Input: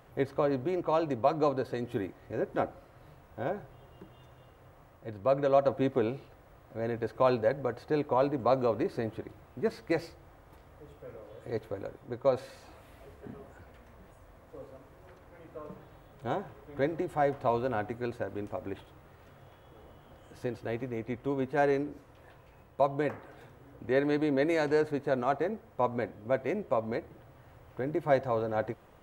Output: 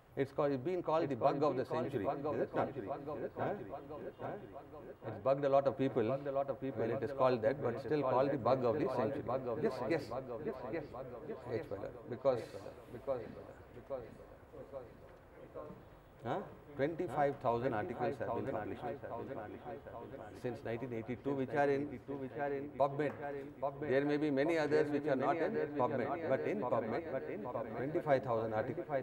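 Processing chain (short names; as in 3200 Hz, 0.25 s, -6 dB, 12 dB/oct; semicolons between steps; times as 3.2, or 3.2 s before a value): notch 6000 Hz, Q 23; on a send: dark delay 0.827 s, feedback 58%, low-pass 3000 Hz, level -6 dB; on the sum: gain -6 dB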